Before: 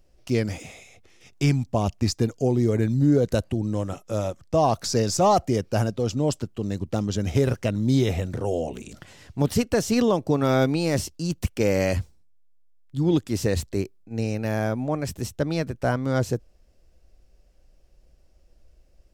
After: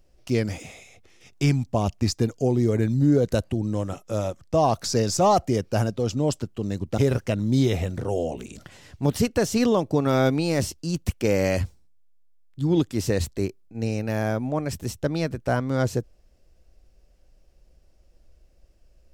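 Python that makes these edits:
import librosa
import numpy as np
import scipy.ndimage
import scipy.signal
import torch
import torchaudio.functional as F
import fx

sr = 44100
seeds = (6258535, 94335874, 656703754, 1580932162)

y = fx.edit(x, sr, fx.cut(start_s=6.98, length_s=0.36), tone=tone)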